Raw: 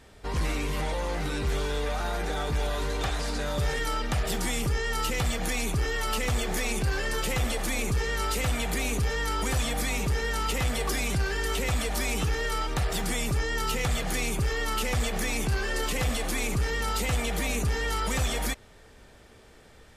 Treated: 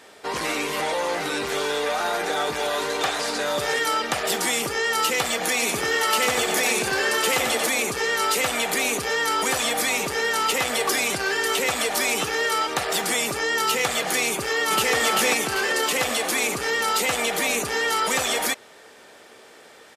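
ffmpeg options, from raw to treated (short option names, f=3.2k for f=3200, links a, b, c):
-filter_complex "[0:a]asplit=3[a][b][c];[a]afade=t=out:st=5.61:d=0.02[d];[b]aecho=1:1:92:0.596,afade=t=in:st=5.61:d=0.02,afade=t=out:st=7.67:d=0.02[e];[c]afade=t=in:st=7.67:d=0.02[f];[d][e][f]amix=inputs=3:normalize=0,asplit=2[g][h];[h]afade=t=in:st=14.31:d=0.01,afade=t=out:st=14.94:d=0.01,aecho=0:1:390|780|1170|1560|1950:0.891251|0.311938|0.109178|0.0382124|0.0133743[i];[g][i]amix=inputs=2:normalize=0,highpass=370,volume=8.5dB"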